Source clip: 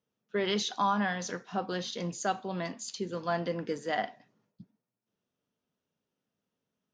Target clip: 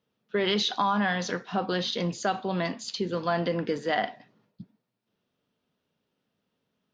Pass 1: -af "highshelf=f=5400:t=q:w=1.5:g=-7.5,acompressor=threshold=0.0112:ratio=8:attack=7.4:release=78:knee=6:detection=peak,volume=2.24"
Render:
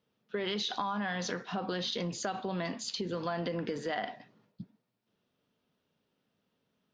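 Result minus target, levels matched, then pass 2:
compression: peak gain reduction +9 dB
-af "highshelf=f=5400:t=q:w=1.5:g=-7.5,acompressor=threshold=0.0376:ratio=8:attack=7.4:release=78:knee=6:detection=peak,volume=2.24"

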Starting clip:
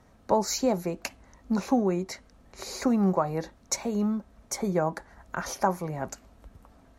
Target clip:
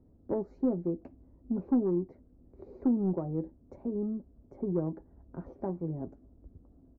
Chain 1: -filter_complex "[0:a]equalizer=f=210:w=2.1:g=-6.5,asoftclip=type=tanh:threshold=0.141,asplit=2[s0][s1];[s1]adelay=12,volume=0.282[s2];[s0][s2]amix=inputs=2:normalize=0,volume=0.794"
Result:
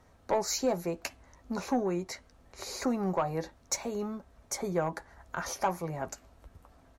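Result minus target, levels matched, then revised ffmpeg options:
250 Hz band -4.0 dB
-filter_complex "[0:a]lowpass=f=310:t=q:w=2,equalizer=f=210:w=2.1:g=-6.5,asoftclip=type=tanh:threshold=0.141,asplit=2[s0][s1];[s1]adelay=12,volume=0.282[s2];[s0][s2]amix=inputs=2:normalize=0,volume=0.794"

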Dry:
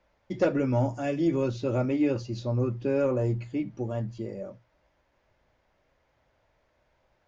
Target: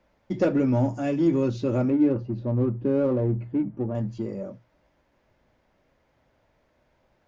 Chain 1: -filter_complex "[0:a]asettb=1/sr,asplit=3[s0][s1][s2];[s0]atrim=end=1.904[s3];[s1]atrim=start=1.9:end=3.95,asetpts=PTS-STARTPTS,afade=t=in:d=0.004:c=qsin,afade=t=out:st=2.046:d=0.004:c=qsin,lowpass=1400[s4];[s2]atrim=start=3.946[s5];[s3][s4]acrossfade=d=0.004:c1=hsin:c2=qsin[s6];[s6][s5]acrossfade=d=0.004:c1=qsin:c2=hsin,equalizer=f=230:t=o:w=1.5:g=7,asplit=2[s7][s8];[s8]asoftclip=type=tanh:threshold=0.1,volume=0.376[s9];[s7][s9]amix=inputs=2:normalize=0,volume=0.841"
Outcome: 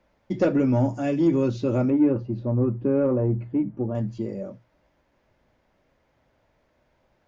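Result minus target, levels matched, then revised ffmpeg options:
saturation: distortion -8 dB
-filter_complex "[0:a]asettb=1/sr,asplit=3[s0][s1][s2];[s0]atrim=end=1.904[s3];[s1]atrim=start=1.9:end=3.95,asetpts=PTS-STARTPTS,afade=t=in:d=0.004:c=qsin,afade=t=out:st=2.046:d=0.004:c=qsin,lowpass=1400[s4];[s2]atrim=start=3.946[s5];[s3][s4]acrossfade=d=0.004:c1=hsin:c2=qsin[s6];[s6][s5]acrossfade=d=0.004:c1=qsin:c2=hsin,equalizer=f=230:t=o:w=1.5:g=7,asplit=2[s7][s8];[s8]asoftclip=type=tanh:threshold=0.0251,volume=0.376[s9];[s7][s9]amix=inputs=2:normalize=0,volume=0.841"

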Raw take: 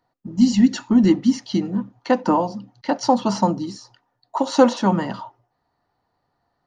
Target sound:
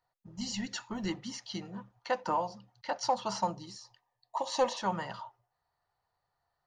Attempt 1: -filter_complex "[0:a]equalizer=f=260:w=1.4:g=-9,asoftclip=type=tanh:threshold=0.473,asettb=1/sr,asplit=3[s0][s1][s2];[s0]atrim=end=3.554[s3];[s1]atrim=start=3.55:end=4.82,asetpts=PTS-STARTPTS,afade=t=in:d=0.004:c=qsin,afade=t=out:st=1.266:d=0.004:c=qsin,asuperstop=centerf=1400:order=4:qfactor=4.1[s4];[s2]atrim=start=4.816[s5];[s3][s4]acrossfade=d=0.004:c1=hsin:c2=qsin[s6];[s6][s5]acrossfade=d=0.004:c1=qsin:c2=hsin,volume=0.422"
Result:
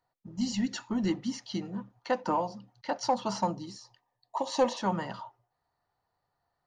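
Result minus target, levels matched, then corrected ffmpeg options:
250 Hz band +5.0 dB
-filter_complex "[0:a]equalizer=f=260:w=1.4:g=-20,asoftclip=type=tanh:threshold=0.473,asettb=1/sr,asplit=3[s0][s1][s2];[s0]atrim=end=3.554[s3];[s1]atrim=start=3.55:end=4.82,asetpts=PTS-STARTPTS,afade=t=in:d=0.004:c=qsin,afade=t=out:st=1.266:d=0.004:c=qsin,asuperstop=centerf=1400:order=4:qfactor=4.1[s4];[s2]atrim=start=4.816[s5];[s3][s4]acrossfade=d=0.004:c1=hsin:c2=qsin[s6];[s6][s5]acrossfade=d=0.004:c1=qsin:c2=hsin,volume=0.422"

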